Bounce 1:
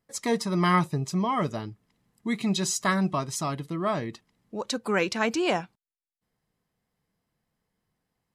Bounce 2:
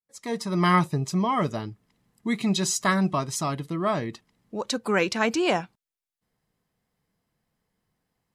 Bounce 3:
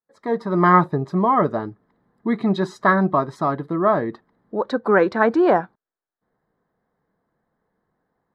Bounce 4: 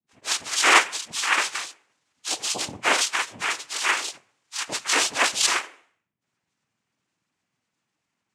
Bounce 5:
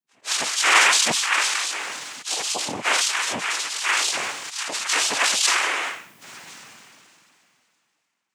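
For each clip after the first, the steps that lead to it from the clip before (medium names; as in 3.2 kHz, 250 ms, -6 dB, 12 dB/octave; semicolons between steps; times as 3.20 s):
fade-in on the opening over 0.66 s; trim +2 dB
FFT filter 110 Hz 0 dB, 390 Hz +10 dB, 1.7 kHz +8 dB, 2.7 kHz -15 dB, 3.8 kHz -5 dB, 6.4 kHz -22 dB; trim -1 dB
spectrum inverted on a logarithmic axis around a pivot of 1.2 kHz; de-hum 147.2 Hz, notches 21; noise-vocoded speech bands 4
high-pass 140 Hz 12 dB/octave; bass shelf 440 Hz -11 dB; decay stretcher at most 22 dB/s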